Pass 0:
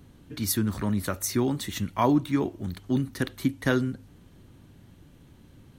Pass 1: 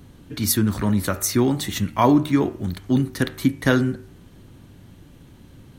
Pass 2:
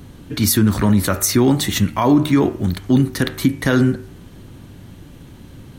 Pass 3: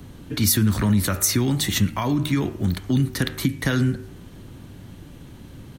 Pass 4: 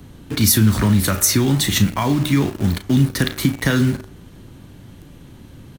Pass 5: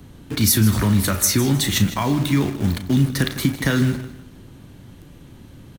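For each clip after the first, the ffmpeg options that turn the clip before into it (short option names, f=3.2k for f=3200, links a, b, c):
-af "bandreject=f=75.88:t=h:w=4,bandreject=f=151.76:t=h:w=4,bandreject=f=227.64:t=h:w=4,bandreject=f=303.52:t=h:w=4,bandreject=f=379.4:t=h:w=4,bandreject=f=455.28:t=h:w=4,bandreject=f=531.16:t=h:w=4,bandreject=f=607.04:t=h:w=4,bandreject=f=682.92:t=h:w=4,bandreject=f=758.8:t=h:w=4,bandreject=f=834.68:t=h:w=4,bandreject=f=910.56:t=h:w=4,bandreject=f=986.44:t=h:w=4,bandreject=f=1.06232k:t=h:w=4,bandreject=f=1.1382k:t=h:w=4,bandreject=f=1.21408k:t=h:w=4,bandreject=f=1.28996k:t=h:w=4,bandreject=f=1.36584k:t=h:w=4,bandreject=f=1.44172k:t=h:w=4,bandreject=f=1.5176k:t=h:w=4,bandreject=f=1.59348k:t=h:w=4,bandreject=f=1.66936k:t=h:w=4,bandreject=f=1.74524k:t=h:w=4,bandreject=f=1.82112k:t=h:w=4,bandreject=f=1.897k:t=h:w=4,bandreject=f=1.97288k:t=h:w=4,bandreject=f=2.04876k:t=h:w=4,bandreject=f=2.12464k:t=h:w=4,bandreject=f=2.20052k:t=h:w=4,bandreject=f=2.2764k:t=h:w=4,bandreject=f=2.35228k:t=h:w=4,bandreject=f=2.42816k:t=h:w=4,bandreject=f=2.50404k:t=h:w=4,bandreject=f=2.57992k:t=h:w=4,bandreject=f=2.6558k:t=h:w=4,bandreject=f=2.73168k:t=h:w=4,volume=6.5dB"
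-af "alimiter=limit=-12.5dB:level=0:latency=1:release=43,volume=7dB"
-filter_complex "[0:a]acrossover=split=200|1600|6000[a][b][c][d];[b]acompressor=threshold=-24dB:ratio=6[e];[a][e][c][d]amix=inputs=4:normalize=0,asplit=2[f][g];[g]adelay=110.8,volume=-29dB,highshelf=f=4k:g=-2.49[h];[f][h]amix=inputs=2:normalize=0,volume=-2dB"
-filter_complex "[0:a]asplit=2[a][b];[b]acrusher=bits=4:mix=0:aa=0.000001,volume=-4dB[c];[a][c]amix=inputs=2:normalize=0,asplit=2[d][e];[e]adelay=36,volume=-11.5dB[f];[d][f]amix=inputs=2:normalize=0"
-af "aecho=1:1:156|312|468:0.2|0.0638|0.0204,volume=-2dB"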